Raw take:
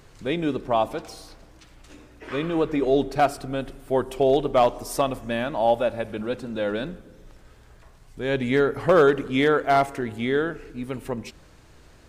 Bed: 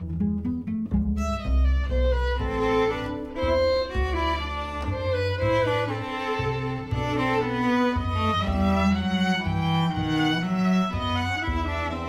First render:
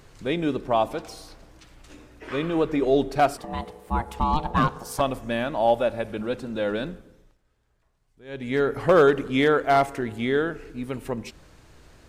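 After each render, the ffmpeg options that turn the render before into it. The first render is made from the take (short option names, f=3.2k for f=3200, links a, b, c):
-filter_complex "[0:a]asplit=3[a][b][c];[a]afade=t=out:st=3.37:d=0.02[d];[b]aeval=exprs='val(0)*sin(2*PI*460*n/s)':c=same,afade=t=in:st=3.37:d=0.02,afade=t=out:st=4.99:d=0.02[e];[c]afade=t=in:st=4.99:d=0.02[f];[d][e][f]amix=inputs=3:normalize=0,asplit=3[g][h][i];[g]atrim=end=7.37,asetpts=PTS-STARTPTS,afade=t=out:st=6.88:d=0.49:silence=0.112202[j];[h]atrim=start=7.37:end=8.25,asetpts=PTS-STARTPTS,volume=-19dB[k];[i]atrim=start=8.25,asetpts=PTS-STARTPTS,afade=t=in:d=0.49:silence=0.112202[l];[j][k][l]concat=n=3:v=0:a=1"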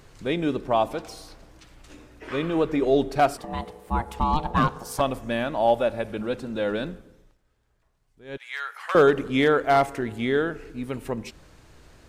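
-filter_complex "[0:a]asettb=1/sr,asplit=3[a][b][c];[a]atrim=end=8.374[d];[b]atrim=start=8.37:end=8.95,asetpts=PTS-STARTPTS,afade=t=in:d=0.004:c=qsin,afade=t=out:st=0.576:d=0.004:c=qsin,highpass=f=1.1k:w=0.5412,highpass=f=1.1k:w=1.3066[e];[c]atrim=start=8.946[f];[d][e]acrossfade=d=0.004:c1=hsin:c2=qsin[g];[g][f]acrossfade=d=0.004:c1=qsin:c2=hsin"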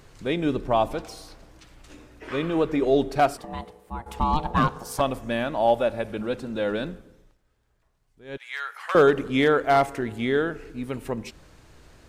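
-filter_complex "[0:a]asettb=1/sr,asplit=3[a][b][c];[a]atrim=end=0.454[d];[b]atrim=start=0.45:end=1.05,asetpts=PTS-STARTPTS,afade=t=in:d=0.004:c=qsin,afade=t=out:st=0.596:d=0.004:c=qsin,lowshelf=f=88:g=10[e];[c]atrim=start=1.046[f];[d][e]acrossfade=d=0.004:c1=hsin:c2=qsin[g];[g][f]acrossfade=d=0.004:c1=qsin:c2=hsin,asplit=2[h][i];[h]atrim=end=4.06,asetpts=PTS-STARTPTS,afade=t=out:st=3.2:d=0.86:silence=0.266073[j];[i]atrim=start=4.06,asetpts=PTS-STARTPTS,afade=t=in:d=0.004:c=hsin:silence=0.266073[k];[j][k]concat=n=2:v=0:a=1"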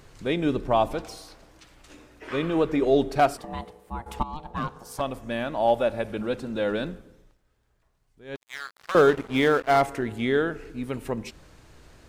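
-filter_complex "[0:a]asettb=1/sr,asplit=3[a][b][c];[a]atrim=end=1.174[d];[b]atrim=start=1.17:end=2.33,asetpts=PTS-STARTPTS,afade=t=in:d=0.004:c=qsin,afade=t=out:st=1.156:d=0.004:c=qsin,lowshelf=f=230:g=-6[e];[c]atrim=start=2.326[f];[d][e]acrossfade=d=0.004:c1=hsin:c2=qsin[g];[g][f]acrossfade=d=0.004:c1=qsin:c2=hsin,asettb=1/sr,asplit=3[h][i][j];[h]atrim=end=8.354[k];[i]atrim=start=8.35:end=9.81,asetpts=PTS-STARTPTS,afade=t=in:d=0.004:c=qsin,afade=t=out:st=1.456:d=0.004:c=qsin,aeval=exprs='sgn(val(0))*max(abs(val(0))-0.0178,0)':c=same[l];[j]atrim=start=9.806[m];[k][l]acrossfade=d=0.004:c1=hsin:c2=qsin[n];[n][m]acrossfade=d=0.004:c1=qsin:c2=hsin,asplit=2[o][p];[o]atrim=end=4.23,asetpts=PTS-STARTPTS,afade=t=out:st=4.226:d=0.004:c=hsin:silence=0.16788[q];[p]atrim=start=4.23,asetpts=PTS-STARTPTS,afade=t=in:d=1.72:silence=0.16788[r];[q][r]concat=n=2:v=0:a=1"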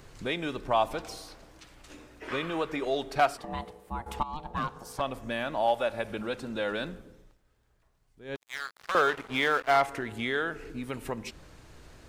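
-filter_complex "[0:a]acrossover=split=700|5100[a][b][c];[a]acompressor=threshold=-34dB:ratio=6[d];[c]alimiter=level_in=12.5dB:limit=-24dB:level=0:latency=1:release=393,volume=-12.5dB[e];[d][b][e]amix=inputs=3:normalize=0"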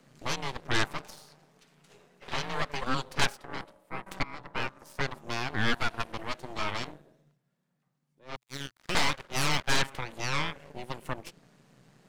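-af "afreqshift=120,aeval=exprs='0.282*(cos(1*acos(clip(val(0)/0.282,-1,1)))-cos(1*PI/2))+0.126*(cos(3*acos(clip(val(0)/0.282,-1,1)))-cos(3*PI/2))+0.0631*(cos(8*acos(clip(val(0)/0.282,-1,1)))-cos(8*PI/2))':c=same"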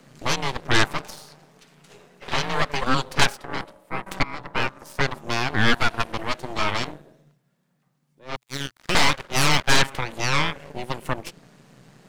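-af "volume=8.5dB,alimiter=limit=-1dB:level=0:latency=1"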